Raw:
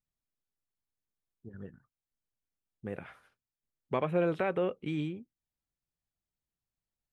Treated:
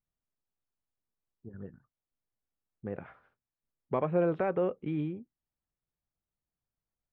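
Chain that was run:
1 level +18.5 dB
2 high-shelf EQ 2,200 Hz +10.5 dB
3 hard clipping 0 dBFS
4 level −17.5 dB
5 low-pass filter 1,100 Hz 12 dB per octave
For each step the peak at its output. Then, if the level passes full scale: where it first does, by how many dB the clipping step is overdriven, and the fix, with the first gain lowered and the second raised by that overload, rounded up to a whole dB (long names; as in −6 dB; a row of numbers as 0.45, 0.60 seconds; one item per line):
+1.0, +3.0, 0.0, −17.5, −17.5 dBFS
step 1, 3.0 dB
step 1 +15.5 dB, step 4 −14.5 dB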